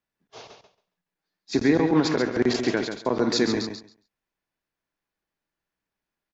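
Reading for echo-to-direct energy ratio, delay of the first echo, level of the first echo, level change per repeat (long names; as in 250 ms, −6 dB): −7.5 dB, 137 ms, −7.5 dB, −16.0 dB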